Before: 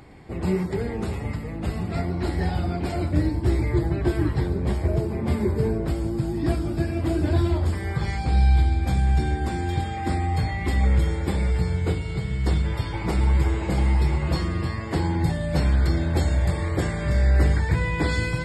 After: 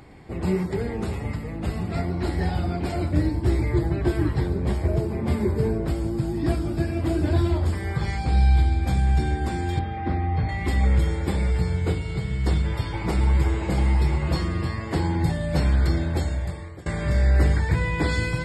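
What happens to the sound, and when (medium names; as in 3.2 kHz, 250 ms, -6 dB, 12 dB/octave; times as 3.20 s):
9.79–10.49 s: distance through air 330 m
15.92–16.86 s: fade out linear, to -23.5 dB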